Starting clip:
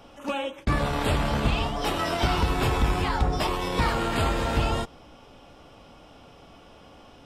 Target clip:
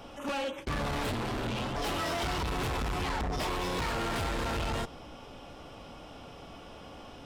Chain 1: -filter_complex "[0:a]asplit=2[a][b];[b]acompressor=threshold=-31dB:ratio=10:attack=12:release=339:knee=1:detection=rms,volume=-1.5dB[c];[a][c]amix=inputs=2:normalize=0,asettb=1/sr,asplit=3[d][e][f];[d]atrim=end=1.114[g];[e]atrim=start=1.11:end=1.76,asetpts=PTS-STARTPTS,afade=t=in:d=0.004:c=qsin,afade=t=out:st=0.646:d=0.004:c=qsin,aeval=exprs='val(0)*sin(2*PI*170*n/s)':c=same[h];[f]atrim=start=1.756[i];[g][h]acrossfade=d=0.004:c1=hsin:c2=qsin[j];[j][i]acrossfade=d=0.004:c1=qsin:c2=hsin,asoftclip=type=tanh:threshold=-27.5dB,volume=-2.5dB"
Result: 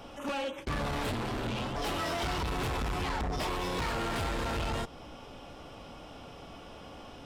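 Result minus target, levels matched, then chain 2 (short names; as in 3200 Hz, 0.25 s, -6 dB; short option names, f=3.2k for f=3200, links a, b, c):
compressor: peak gain reduction +7 dB
-filter_complex "[0:a]asplit=2[a][b];[b]acompressor=threshold=-23dB:ratio=10:attack=12:release=339:knee=1:detection=rms,volume=-1.5dB[c];[a][c]amix=inputs=2:normalize=0,asettb=1/sr,asplit=3[d][e][f];[d]atrim=end=1.114[g];[e]atrim=start=1.11:end=1.76,asetpts=PTS-STARTPTS,afade=t=in:d=0.004:c=qsin,afade=t=out:st=0.646:d=0.004:c=qsin,aeval=exprs='val(0)*sin(2*PI*170*n/s)':c=same[h];[f]atrim=start=1.756[i];[g][h]acrossfade=d=0.004:c1=hsin:c2=qsin[j];[j][i]acrossfade=d=0.004:c1=qsin:c2=hsin,asoftclip=type=tanh:threshold=-27.5dB,volume=-2.5dB"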